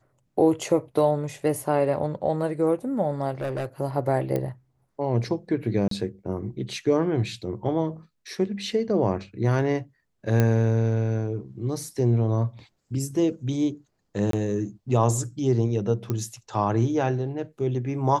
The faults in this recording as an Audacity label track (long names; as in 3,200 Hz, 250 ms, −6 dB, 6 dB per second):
3.410000	3.660000	clipping −25 dBFS
4.360000	4.360000	click −15 dBFS
5.880000	5.910000	drop-out 33 ms
10.400000	10.400000	click −9 dBFS
14.310000	14.330000	drop-out 23 ms
16.100000	16.100000	click −15 dBFS